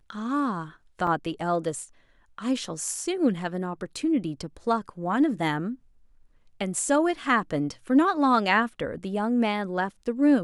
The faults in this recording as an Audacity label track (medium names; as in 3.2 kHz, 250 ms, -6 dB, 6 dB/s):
1.070000	1.070000	dropout 2.8 ms